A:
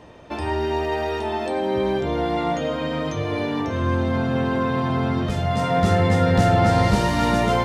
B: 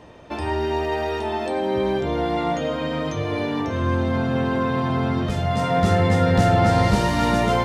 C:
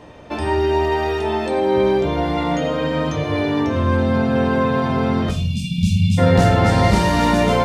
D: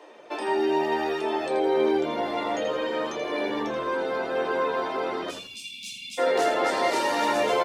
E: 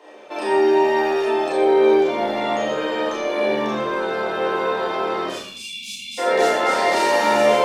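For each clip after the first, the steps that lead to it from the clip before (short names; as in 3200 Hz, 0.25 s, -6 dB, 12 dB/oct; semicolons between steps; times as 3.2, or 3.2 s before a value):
nothing audible
spectral delete 5.31–6.18, 240–2200 Hz; reverb RT60 0.55 s, pre-delay 7 ms, DRR 6 dB; gain +3 dB
reverb removal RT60 0.55 s; steep high-pass 320 Hz 48 dB/oct; on a send: frequency-shifting echo 82 ms, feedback 35%, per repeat -78 Hz, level -8.5 dB; on the sum: gain -4.5 dB
Schroeder reverb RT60 0.4 s, combs from 29 ms, DRR -4.5 dB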